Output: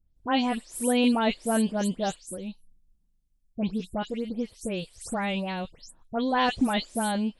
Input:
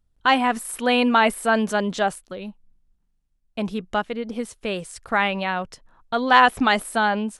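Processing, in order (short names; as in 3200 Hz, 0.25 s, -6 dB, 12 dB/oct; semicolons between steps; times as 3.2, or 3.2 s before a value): spectral delay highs late, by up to 0.162 s; bell 1400 Hz -14 dB 2 oct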